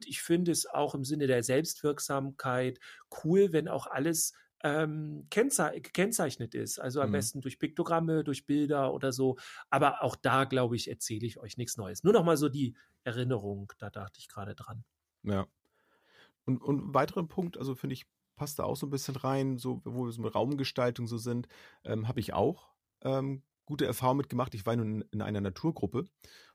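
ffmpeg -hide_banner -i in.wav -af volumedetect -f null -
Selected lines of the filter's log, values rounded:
mean_volume: -32.3 dB
max_volume: -12.9 dB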